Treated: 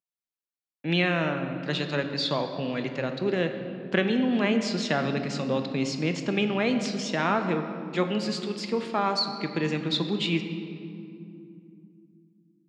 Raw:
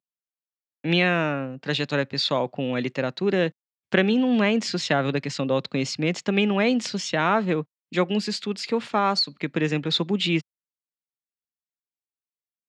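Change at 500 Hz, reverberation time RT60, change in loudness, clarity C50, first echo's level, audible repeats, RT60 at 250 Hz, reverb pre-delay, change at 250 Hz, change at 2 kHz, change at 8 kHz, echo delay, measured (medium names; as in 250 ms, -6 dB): -3.5 dB, 2.7 s, -3.5 dB, 7.5 dB, no echo, no echo, 4.1 s, 3 ms, -2.5 dB, -3.5 dB, -4.0 dB, no echo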